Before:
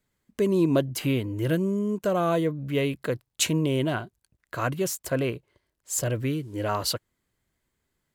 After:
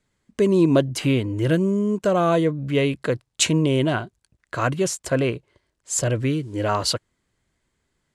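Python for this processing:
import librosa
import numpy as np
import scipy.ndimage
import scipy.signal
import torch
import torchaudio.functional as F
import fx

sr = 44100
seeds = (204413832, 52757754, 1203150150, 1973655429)

y = scipy.signal.sosfilt(scipy.signal.butter(4, 9500.0, 'lowpass', fs=sr, output='sos'), x)
y = y * librosa.db_to_amplitude(5.0)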